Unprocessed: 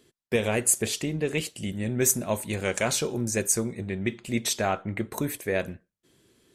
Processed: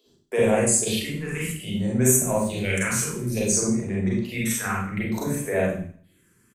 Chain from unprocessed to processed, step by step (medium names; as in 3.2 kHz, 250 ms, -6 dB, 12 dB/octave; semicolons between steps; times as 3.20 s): bands offset in time highs, lows 60 ms, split 350 Hz; phase shifter stages 4, 0.59 Hz, lowest notch 600–4400 Hz; Schroeder reverb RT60 0.51 s, combs from 32 ms, DRR -4.5 dB